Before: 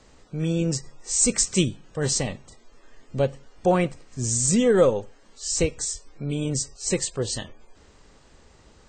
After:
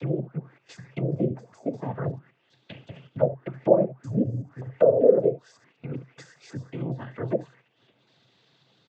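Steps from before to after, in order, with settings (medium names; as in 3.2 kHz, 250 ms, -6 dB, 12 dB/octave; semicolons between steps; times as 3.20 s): slices played last to first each 192 ms, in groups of 3; early reflections 39 ms -15.5 dB, 70 ms -16 dB; in parallel at -1 dB: compression, threshold -35 dBFS, peak gain reduction 20.5 dB; on the sum: noise-vocoded speech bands 16; peaking EQ 130 Hz +9.5 dB 0.2 oct; upward compressor, threshold -42 dBFS; gate -42 dBFS, range -10 dB; touch-sensitive low-pass 560–3900 Hz down, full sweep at -17 dBFS; trim -7.5 dB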